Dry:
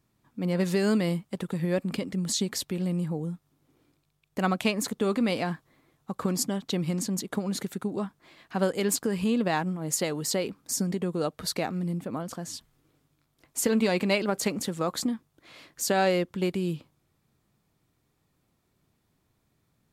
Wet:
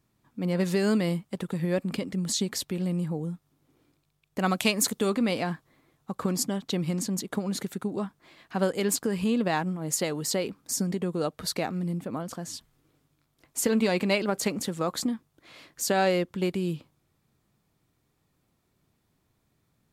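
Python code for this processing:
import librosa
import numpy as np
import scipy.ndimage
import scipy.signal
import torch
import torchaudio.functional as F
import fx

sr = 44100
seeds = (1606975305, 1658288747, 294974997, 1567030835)

y = fx.high_shelf(x, sr, hz=3500.0, db=9.5, at=(4.46, 5.1))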